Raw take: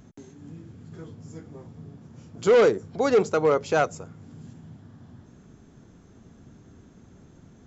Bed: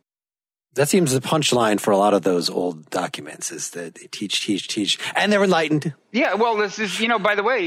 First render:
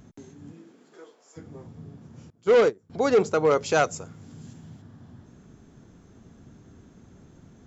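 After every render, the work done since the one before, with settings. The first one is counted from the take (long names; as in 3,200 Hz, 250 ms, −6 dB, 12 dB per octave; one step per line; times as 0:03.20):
0:00.51–0:01.36: high-pass filter 200 Hz → 600 Hz 24 dB per octave
0:02.30–0:02.90: expander for the loud parts 2.5 to 1, over −29 dBFS
0:03.50–0:04.82: high-shelf EQ 3,000 Hz +8 dB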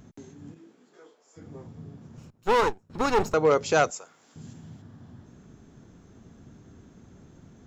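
0:00.54–0:01.42: micro pitch shift up and down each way 23 cents
0:02.17–0:03.34: lower of the sound and its delayed copy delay 0.75 ms
0:03.90–0:04.36: high-pass filter 670 Hz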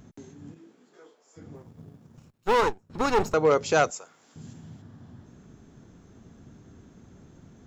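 0:01.55–0:02.54: mu-law and A-law mismatch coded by A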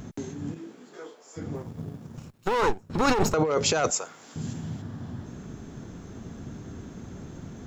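in parallel at +0.5 dB: brickwall limiter −17.5 dBFS, peak gain reduction 8 dB
on the sum: compressor whose output falls as the input rises −22 dBFS, ratio −1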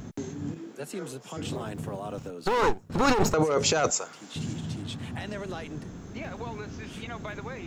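mix in bed −20.5 dB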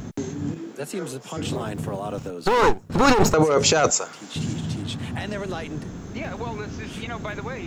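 level +6 dB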